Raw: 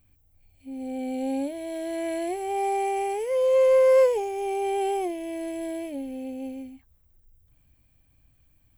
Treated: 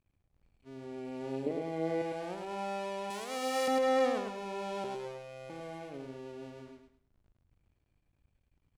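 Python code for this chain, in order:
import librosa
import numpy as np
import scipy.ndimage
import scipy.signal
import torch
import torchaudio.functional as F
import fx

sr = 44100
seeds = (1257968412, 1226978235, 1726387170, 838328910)

y = fx.cycle_switch(x, sr, every=2, mode='muted')
y = fx.small_body(y, sr, hz=(260.0, 410.0, 2000.0), ring_ms=20, db=13, at=(1.46, 2.02))
y = fx.riaa(y, sr, side='recording', at=(3.1, 3.68))
y = fx.robotise(y, sr, hz=131.0, at=(4.84, 5.5))
y = fx.air_absorb(y, sr, metres=71.0)
y = fx.echo_feedback(y, sr, ms=105, feedback_pct=27, wet_db=-5)
y = y * 10.0 ** (-8.5 / 20.0)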